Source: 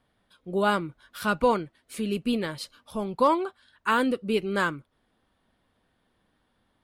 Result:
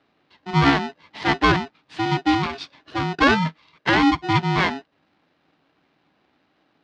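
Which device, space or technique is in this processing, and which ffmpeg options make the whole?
ring modulator pedal into a guitar cabinet: -af "aeval=exprs='val(0)*sgn(sin(2*PI*550*n/s))':c=same,highpass=78,equalizer=f=160:t=q:w=4:g=8,equalizer=f=280:t=q:w=4:g=8,equalizer=f=520:t=q:w=4:g=-5,lowpass=f=4.6k:w=0.5412,lowpass=f=4.6k:w=1.3066,volume=5dB"

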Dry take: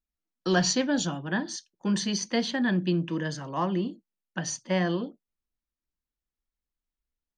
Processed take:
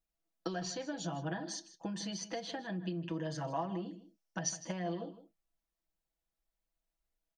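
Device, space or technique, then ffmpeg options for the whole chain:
serial compression, leveller first: -filter_complex "[0:a]acompressor=threshold=-29dB:ratio=6,acompressor=threshold=-38dB:ratio=5,equalizer=f=680:t=o:w=0.56:g=10,aecho=1:1:6.1:0.72,asettb=1/sr,asplit=3[a][b][c];[a]atrim=end=3.864[d];[b]atrim=start=3.86:end=4.49,asetpts=PTS-STARTPTS,afade=t=in:d=0.004:c=qsin,afade=t=out:st=0.626:d=0.004:c=qsin,equalizer=f=5.6k:t=o:w=0.3:g=12[e];[c]atrim=start=4.486[f];[d][e]acrossfade=d=0.004:c1=hsin:c2=qsin[g];[g][f]acrossfade=d=0.004:c1=qsin:c2=hsin,asplit=2[h][i];[i]adelay=157.4,volume=-14dB,highshelf=f=4k:g=-3.54[j];[h][j]amix=inputs=2:normalize=0,volume=-2dB"

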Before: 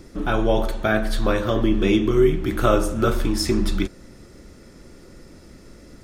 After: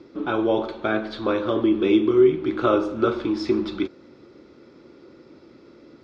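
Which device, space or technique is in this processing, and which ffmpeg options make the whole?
kitchen radio: -af "highpass=190,equalizer=f=190:t=q:w=4:g=-8,equalizer=f=340:t=q:w=4:g=4,equalizer=f=680:t=q:w=4:g=-5,equalizer=f=1.8k:t=q:w=4:g=-9,equalizer=f=2.9k:t=q:w=4:g=-5,lowpass=f=4k:w=0.5412,lowpass=f=4k:w=1.3066"

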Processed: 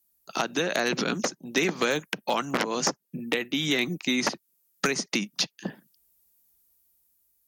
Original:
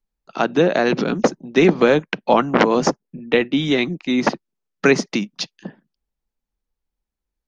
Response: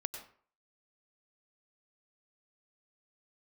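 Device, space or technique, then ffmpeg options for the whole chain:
FM broadcast chain: -filter_complex "[0:a]highpass=65,dynaudnorm=f=500:g=5:m=8dB,acrossover=split=1200|2400|5600[a][b][c][d];[a]acompressor=threshold=-26dB:ratio=4[e];[b]acompressor=threshold=-30dB:ratio=4[f];[c]acompressor=threshold=-41dB:ratio=4[g];[d]acompressor=threshold=-51dB:ratio=4[h];[e][f][g][h]amix=inputs=4:normalize=0,aemphasis=mode=production:type=50fm,alimiter=limit=-11.5dB:level=0:latency=1:release=409,asoftclip=type=hard:threshold=-15dB,lowpass=f=15k:w=0.5412,lowpass=f=15k:w=1.3066,aemphasis=mode=production:type=50fm"

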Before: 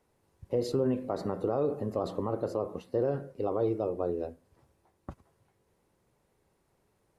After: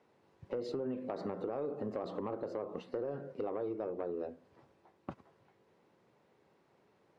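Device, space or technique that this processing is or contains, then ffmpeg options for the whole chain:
AM radio: -af "highpass=170,lowpass=4k,acompressor=threshold=-37dB:ratio=10,asoftclip=type=tanh:threshold=-32dB,volume=4.5dB"

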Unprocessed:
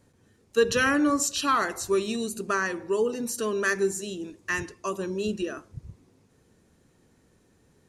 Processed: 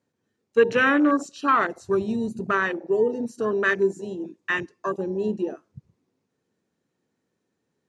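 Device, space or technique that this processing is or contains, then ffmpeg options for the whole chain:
over-cleaned archive recording: -filter_complex "[0:a]highpass=160,lowpass=6.9k,afwtdn=0.0316,asplit=3[a][b][c];[a]afade=t=out:st=1.7:d=0.02[d];[b]asubboost=boost=6.5:cutoff=160,afade=t=in:st=1.7:d=0.02,afade=t=out:st=2.52:d=0.02[e];[c]afade=t=in:st=2.52:d=0.02[f];[d][e][f]amix=inputs=3:normalize=0,volume=4dB"

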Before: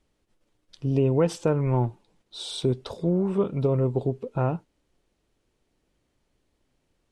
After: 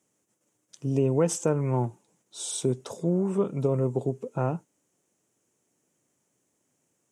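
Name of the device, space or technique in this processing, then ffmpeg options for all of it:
budget condenser microphone: -af "highpass=f=120:w=0.5412,highpass=f=120:w=1.3066,highshelf=f=5.4k:t=q:w=3:g=8,volume=-1.5dB"

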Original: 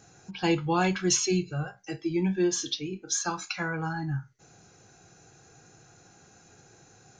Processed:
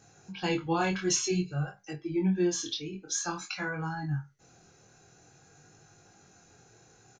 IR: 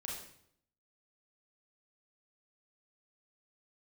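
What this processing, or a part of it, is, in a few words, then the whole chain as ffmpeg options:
double-tracked vocal: -filter_complex "[0:a]asettb=1/sr,asplit=3[a][b][c];[a]atrim=end=1.914[d];[b]atrim=start=1.91:end=2.36,asetpts=PTS-STARTPTS,afade=t=in:d=0.004:c=qsin,afade=t=out:st=0.446:d=0.004:c=qsin,lowpass=f=1.9k:p=1[e];[c]atrim=start=2.356[f];[d][e]acrossfade=d=0.004:c1=hsin:c2=qsin[g];[g][f]acrossfade=d=0.004:c1=qsin:c2=hsin,asplit=2[h][i];[i]adelay=27,volume=-14dB[j];[h][j]amix=inputs=2:normalize=0,flanger=delay=19.5:depth=5.7:speed=0.51"

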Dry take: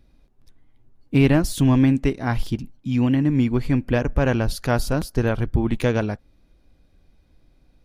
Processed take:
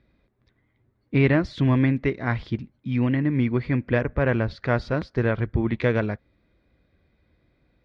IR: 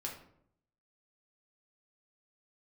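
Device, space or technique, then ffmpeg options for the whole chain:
guitar cabinet: -filter_complex "[0:a]asettb=1/sr,asplit=3[a][b][c];[a]atrim=end=4.054[d];[b]atrim=start=4.05:end=4.77,asetpts=PTS-STARTPTS,afade=t=in:d=0.004:c=qsin,afade=t=out:st=0.716:d=0.004:c=qsin,highshelf=f=4k:g=-5.5[e];[c]atrim=start=4.766[f];[d][e]acrossfade=d=0.004:c1=hsin:c2=qsin[g];[g][f]acrossfade=d=0.004:c1=qsin:c2=hsin,highpass=79,equalizer=f=160:t=q:w=4:g=-4,equalizer=f=270:t=q:w=4:g=-5,equalizer=f=800:t=q:w=4:g=-6,equalizer=f=2k:t=q:w=4:g=6,equalizer=f=2.9k:t=q:w=4:g=-7,lowpass=f=3.8k:w=0.5412,lowpass=f=3.8k:w=1.3066"

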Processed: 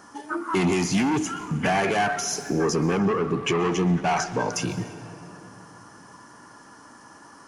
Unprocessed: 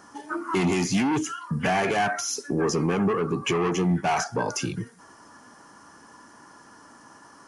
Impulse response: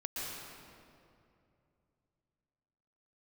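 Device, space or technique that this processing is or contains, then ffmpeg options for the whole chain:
saturated reverb return: -filter_complex "[0:a]asplit=2[a][b];[1:a]atrim=start_sample=2205[c];[b][c]afir=irnorm=-1:irlink=0,asoftclip=type=tanh:threshold=-23.5dB,volume=-9.5dB[d];[a][d]amix=inputs=2:normalize=0,asettb=1/sr,asplit=3[e][f][g];[e]atrim=end=2.984[h];[f]atrim=start=2.98:end=4.53,asetpts=PTS-STARTPTS,afade=t=in:d=0.004:c=qsin,afade=t=out:st=1.546:d=0.004:c=qsin,lowpass=8.6k[i];[g]atrim=start=4.526[j];[h][i]acrossfade=d=0.004:c1=hsin:c2=qsin[k];[k][j]acrossfade=d=0.004:c1=qsin:c2=hsin"

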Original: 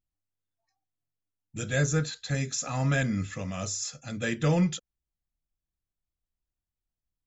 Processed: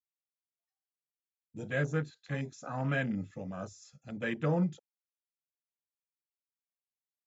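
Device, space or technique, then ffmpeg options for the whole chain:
over-cleaned archive recording: -af "highpass=150,lowpass=7k,afwtdn=0.0141,volume=-3.5dB"

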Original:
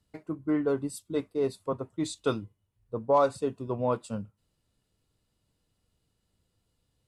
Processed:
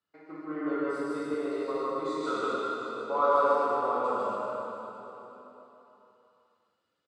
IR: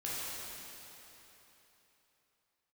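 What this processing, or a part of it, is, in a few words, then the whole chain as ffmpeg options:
station announcement: -filter_complex "[0:a]highpass=340,lowpass=4.6k,equalizer=f=1.3k:t=o:w=0.57:g=11,aecho=1:1:151.6|271.1:1|0.355[a];[1:a]atrim=start_sample=2205[b];[a][b]afir=irnorm=-1:irlink=0,asettb=1/sr,asplit=3[c][d][e];[c]atrim=end=0.714[f];[d]atrim=start=0.71:end=1.34,asetpts=PTS-STARTPTS,afade=t=in:d=0.004:c=qsin,afade=t=out:st=0.626:d=0.004:c=qsin,asubboost=boost=12:cutoff=220[g];[e]atrim=start=1.336[h];[f][g]acrossfade=d=0.004:c1=hsin:c2=qsin[i];[i][h]acrossfade=d=0.004:c1=qsin:c2=hsin,volume=-6.5dB"

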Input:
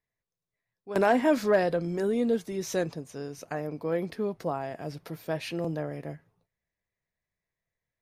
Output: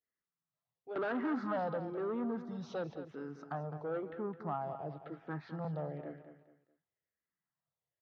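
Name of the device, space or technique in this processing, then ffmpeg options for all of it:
barber-pole phaser into a guitar amplifier: -filter_complex "[0:a]asettb=1/sr,asplit=3[a][b][c];[a]atrim=end=3.524[d];[b]atrim=start=3.52:end=5.61,asetpts=PTS-STARTPTS,afade=t=in:d=0.004:c=qsin,afade=t=out:st=2.086:d=0.004:c=qsin,lowpass=f=2.9k:p=1[e];[c]atrim=start=5.606[f];[d][e]acrossfade=d=0.004:c1=hsin:c2=qsin[g];[g][f]acrossfade=d=0.004:c1=qsin:c2=hsin,asplit=2[h][i];[i]afreqshift=-0.99[j];[h][j]amix=inputs=2:normalize=1,asoftclip=type=tanh:threshold=-28dB,highpass=100,equalizer=f=150:t=q:w=4:g=5,equalizer=f=300:t=q:w=4:g=3,equalizer=f=810:t=q:w=4:g=6,equalizer=f=1.3k:t=q:w=4:g=10,equalizer=f=2.4k:t=q:w=4:g=-7,lowpass=f=3.8k:w=0.5412,lowpass=f=3.8k:w=1.3066,aecho=1:1:211|422|633:0.282|0.0902|0.0289,adynamicequalizer=threshold=0.00447:dfrequency=1800:dqfactor=0.7:tfrequency=1800:tqfactor=0.7:attack=5:release=100:ratio=0.375:range=2.5:mode=cutabove:tftype=highshelf,volume=-5.5dB"

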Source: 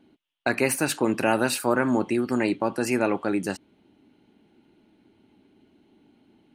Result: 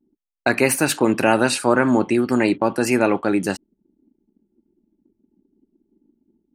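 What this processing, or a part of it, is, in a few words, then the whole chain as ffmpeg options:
voice memo with heavy noise removal: -filter_complex "[0:a]asettb=1/sr,asplit=3[a][b][c];[a]atrim=end=1.254[d];[b]atrim=start=1.25:end=2.16,asetpts=PTS-STARTPTS,afade=t=in:d=0.004:c=qsin,afade=t=out:st=0.906:d=0.004:c=qsin,lowpass=f=10k:w=0.5412,lowpass=f=10k:w=1.3066[e];[c]atrim=start=2.156[f];[d][e]acrossfade=d=0.004:c1=hsin:c2=qsin[g];[g][f]acrossfade=d=0.004:c1=qsin:c2=hsin,anlmdn=0.01,dynaudnorm=f=160:g=3:m=3dB,volume=3dB"

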